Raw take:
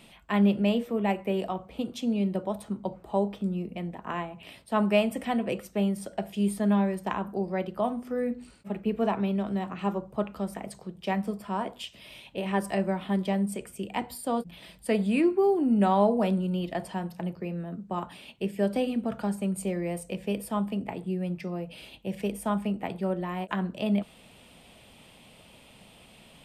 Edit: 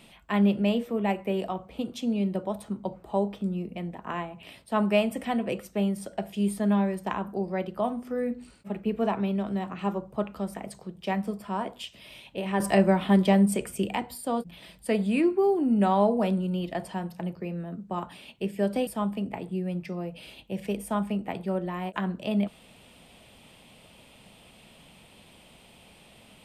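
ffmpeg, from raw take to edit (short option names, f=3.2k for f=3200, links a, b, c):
-filter_complex "[0:a]asplit=4[a][b][c][d];[a]atrim=end=12.602[e];[b]atrim=start=12.598:end=13.962,asetpts=PTS-STARTPTS,volume=7dB[f];[c]atrim=start=13.958:end=18.872[g];[d]atrim=start=20.418[h];[e][f]acrossfade=d=0.004:c1=hsin:c2=hsin[i];[i][g]acrossfade=d=0.004:c1=hsin:c2=hsin[j];[j][h]acrossfade=d=0.004:c1=hsin:c2=hsin"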